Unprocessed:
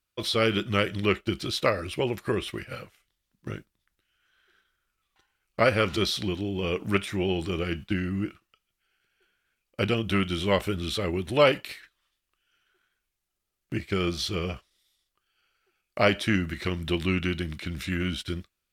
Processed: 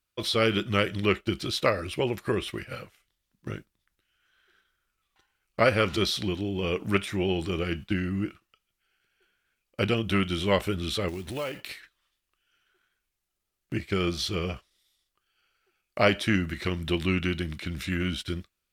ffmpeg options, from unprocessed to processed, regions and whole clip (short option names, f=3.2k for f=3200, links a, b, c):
-filter_complex "[0:a]asettb=1/sr,asplit=3[a][b][c];[a]atrim=end=11.084[d];[b]atrim=start=11.08:end=11.69,asetpts=PTS-STARTPTS,afade=t=in:d=0.004:c=qsin,afade=t=out:st=0.606:d=0.004:c=qsin,acompressor=threshold=-33dB:ratio=3:attack=3.2:release=140:knee=1:detection=peak,acrusher=bits=4:mode=log:mix=0:aa=0.000001[e];[c]atrim=start=11.686[f];[d][e]acrossfade=d=0.004:c1=hsin:c2=qsin[g];[g][f]acrossfade=d=0.004:c1=qsin:c2=hsin"